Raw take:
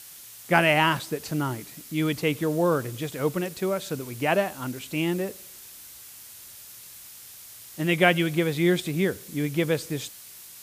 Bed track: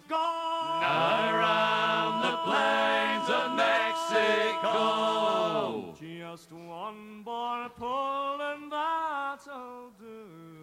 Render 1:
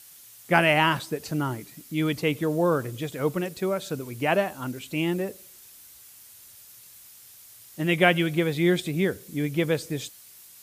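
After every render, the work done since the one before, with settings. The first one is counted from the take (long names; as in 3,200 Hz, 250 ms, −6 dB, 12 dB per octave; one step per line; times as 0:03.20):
broadband denoise 6 dB, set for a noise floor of −46 dBFS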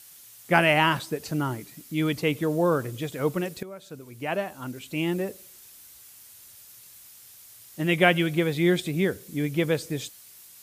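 0:03.63–0:05.23: fade in, from −16.5 dB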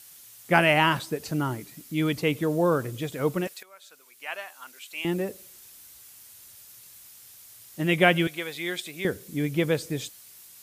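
0:03.47–0:05.05: high-pass filter 1,200 Hz
0:08.27–0:09.05: high-pass filter 1,400 Hz 6 dB per octave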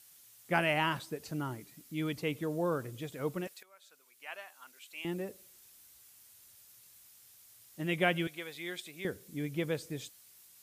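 level −9.5 dB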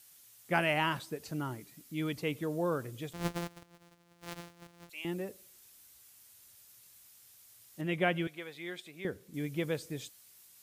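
0:03.13–0:04.90: samples sorted by size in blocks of 256 samples
0:07.81–0:09.34: high-shelf EQ 3,800 Hz −9 dB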